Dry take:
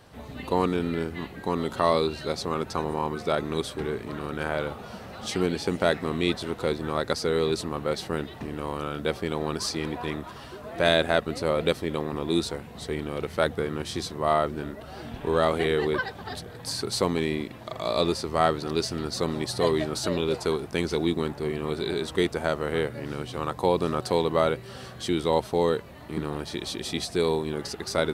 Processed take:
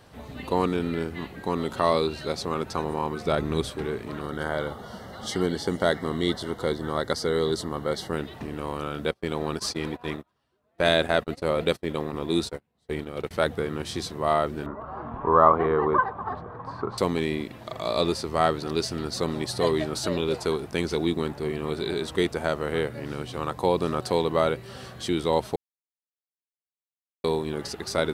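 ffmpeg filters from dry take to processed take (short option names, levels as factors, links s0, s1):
-filter_complex "[0:a]asettb=1/sr,asplit=3[s0][s1][s2];[s0]atrim=end=3.254[s3];[s1]atrim=start=3.25:end=3.7,asetpts=PTS-STARTPTS,afade=t=in:d=0.004:c=qsin,afade=t=out:st=0.446:d=0.004:c=qsin,lowshelf=f=140:g=11[s4];[s2]atrim=start=3.696[s5];[s3][s4]acrossfade=d=0.004:c1=hsin:c2=qsin[s6];[s6][s5]acrossfade=d=0.004:c1=qsin:c2=hsin,asettb=1/sr,asplit=3[s7][s8][s9];[s7]atrim=end=4.214[s10];[s8]atrim=start=4.21:end=8.13,asetpts=PTS-STARTPTS,afade=t=in:d=0.004:c=qsin,afade=t=out:st=3.916:d=0.004:c=qsin,asuperstop=centerf=2500:order=12:qfactor=4.5[s11];[s9]atrim=start=8.126[s12];[s10][s11]acrossfade=d=0.004:c1=hsin:c2=qsin[s13];[s13][s12]acrossfade=d=0.004:c1=qsin:c2=hsin,asettb=1/sr,asplit=3[s14][s15][s16];[s14]atrim=end=9.114[s17];[s15]atrim=start=9.11:end=13.31,asetpts=PTS-STARTPTS,afade=t=in:d=0.004:c=qsin,afade=t=out:st=4.196:d=0.004:c=qsin,agate=range=0.0224:threshold=0.0224:ratio=16:release=100:detection=peak[s18];[s16]atrim=start=13.306[s19];[s17][s18]acrossfade=d=0.004:c1=hsin:c2=qsin[s20];[s20][s19]acrossfade=d=0.004:c1=qsin:c2=hsin,asettb=1/sr,asplit=3[s21][s22][s23];[s21]atrim=end=14.664[s24];[s22]atrim=start=14.66:end=16.98,asetpts=PTS-STARTPTS,afade=t=in:d=0.004:c=qsin,afade=t=out:st=2.316:d=0.004:c=qsin,lowpass=f=1100:t=q:w=6.4[s25];[s23]atrim=start=16.976[s26];[s24][s25]acrossfade=d=0.004:c1=hsin:c2=qsin[s27];[s27][s26]acrossfade=d=0.004:c1=qsin:c2=hsin,asplit=3[s28][s29][s30];[s28]atrim=end=25.56,asetpts=PTS-STARTPTS,afade=t=out:st=25.556:d=0.004:c=hsin[s31];[s29]atrim=start=25.56:end=27.24,asetpts=PTS-STARTPTS,volume=0[s32];[s30]atrim=start=27.24,asetpts=PTS-STARTPTS,afade=t=in:d=0.004:c=hsin[s33];[s31][s32][s33]concat=n=3:v=0:a=1"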